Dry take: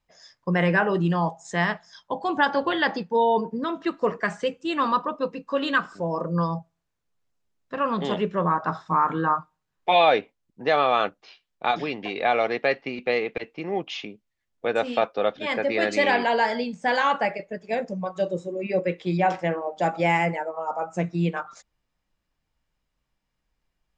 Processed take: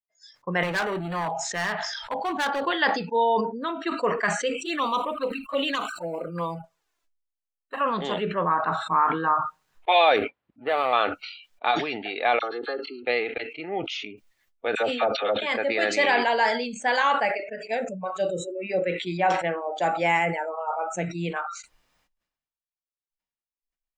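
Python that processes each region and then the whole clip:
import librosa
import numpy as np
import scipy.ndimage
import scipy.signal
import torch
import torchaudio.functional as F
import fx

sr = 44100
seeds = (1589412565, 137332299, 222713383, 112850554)

y = fx.chain(x, sr, fx.lowpass(hz=4600.0, slope=12),
    fx.clip_hard(threshold_db=-22.5),
    fx.sustainer(db_per_s=36.0), at=(0.63, 2.61))
y = fx.chain(y, sr, fx.peak_eq(hz=88.0, db=-9.5, octaves=2.2),
    fx.leveller(passes=1),
    fx.env_flanger(rest_ms=3.3, full_db=-19.0), at=(4.65, 7.81))
y = fx.chain(y, sr, fx.dead_time(dead_ms=0.15),
    fx.highpass(hz=43.0, slope=12),
    fx.air_absorb(metres=450.0), at=(10.16, 10.93))
y = fx.chain(y, sr, fx.fixed_phaser(hz=630.0, stages=6),
    fx.notch_comb(f0_hz=960.0),
    fx.dispersion(late='lows', ms=42.0, hz=1800.0), at=(12.39, 13.05))
y = fx.chain(y, sr, fx.highpass(hz=43.0, slope=12),
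    fx.high_shelf(hz=3800.0, db=-3.0),
    fx.dispersion(late='lows', ms=60.0, hz=1000.0), at=(14.75, 15.42))
y = fx.noise_reduce_blind(y, sr, reduce_db=27)
y = fx.low_shelf(y, sr, hz=310.0, db=-11.5)
y = fx.sustainer(y, sr, db_per_s=66.0)
y = y * 10.0 ** (1.0 / 20.0)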